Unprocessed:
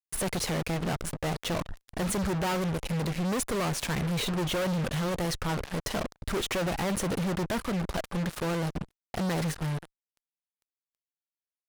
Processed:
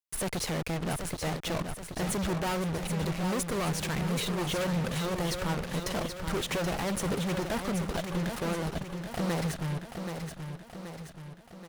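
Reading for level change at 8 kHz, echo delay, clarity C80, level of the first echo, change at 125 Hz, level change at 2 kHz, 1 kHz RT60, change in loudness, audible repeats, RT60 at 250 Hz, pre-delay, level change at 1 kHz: -1.0 dB, 0.778 s, none, -7.0 dB, -1.0 dB, -1.0 dB, none, -1.5 dB, 6, none, none, -1.0 dB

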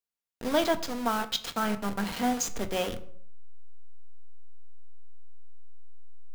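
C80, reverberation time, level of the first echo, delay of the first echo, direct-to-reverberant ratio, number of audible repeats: 18.5 dB, 0.60 s, none, none, 7.0 dB, none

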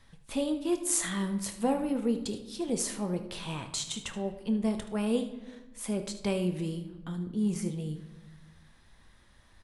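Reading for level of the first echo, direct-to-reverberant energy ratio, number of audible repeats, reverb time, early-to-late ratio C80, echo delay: -14.0 dB, 6.0 dB, 1, 1.1 s, 13.0 dB, 76 ms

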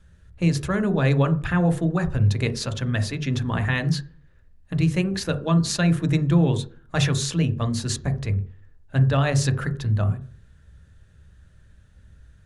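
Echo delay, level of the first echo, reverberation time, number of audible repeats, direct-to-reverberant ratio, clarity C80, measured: none, none, 0.40 s, none, 8.0 dB, 18.0 dB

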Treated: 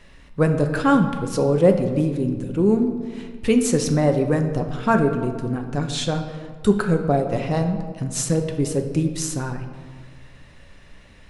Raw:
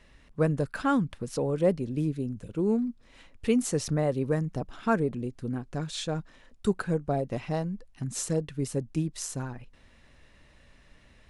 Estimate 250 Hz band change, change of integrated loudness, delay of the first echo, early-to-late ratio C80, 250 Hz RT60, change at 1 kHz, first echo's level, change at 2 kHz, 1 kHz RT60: +8.5 dB, +8.5 dB, none, 9.5 dB, 1.9 s, +9.0 dB, none, +8.5 dB, 1.8 s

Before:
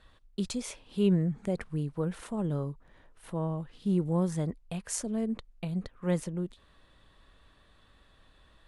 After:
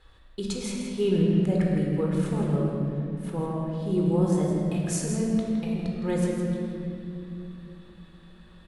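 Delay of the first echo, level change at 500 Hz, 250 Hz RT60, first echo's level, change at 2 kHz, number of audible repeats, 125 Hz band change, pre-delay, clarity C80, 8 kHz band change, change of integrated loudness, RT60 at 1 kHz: 0.163 s, +7.0 dB, 4.6 s, -8.5 dB, +5.5 dB, 1, +6.0 dB, 19 ms, 0.5 dB, +3.5 dB, +5.5 dB, 2.3 s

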